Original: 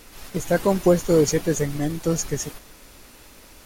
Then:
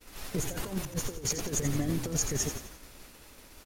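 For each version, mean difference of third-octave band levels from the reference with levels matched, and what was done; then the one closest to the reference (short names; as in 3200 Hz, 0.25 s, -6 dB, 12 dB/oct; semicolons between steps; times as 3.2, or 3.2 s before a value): 8.0 dB: negative-ratio compressor -25 dBFS, ratio -0.5; expander -37 dBFS; on a send: frequency-shifting echo 86 ms, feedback 44%, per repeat -39 Hz, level -9.5 dB; on the sum: gain -6 dB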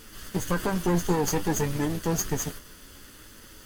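5.0 dB: minimum comb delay 0.64 ms; limiter -18 dBFS, peak gain reduction 9.5 dB; flange 0.58 Hz, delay 8.9 ms, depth 3.1 ms, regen +54%; gain +5 dB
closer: second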